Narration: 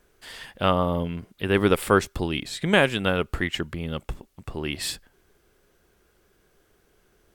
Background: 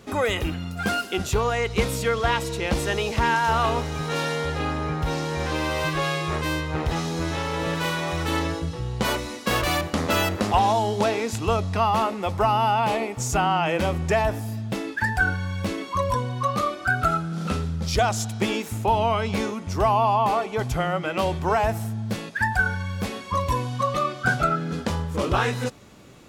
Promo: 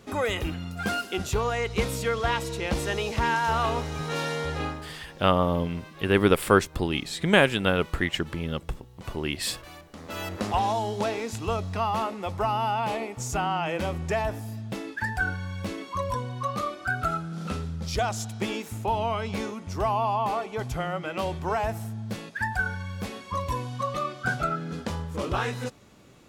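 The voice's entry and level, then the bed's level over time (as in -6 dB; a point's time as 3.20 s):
4.60 s, 0.0 dB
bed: 4.65 s -3.5 dB
5.00 s -22 dB
9.87 s -22 dB
10.42 s -5.5 dB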